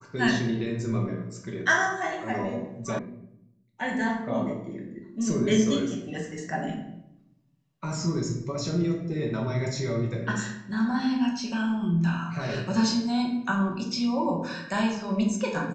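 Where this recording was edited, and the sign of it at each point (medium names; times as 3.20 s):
2.99 s: sound stops dead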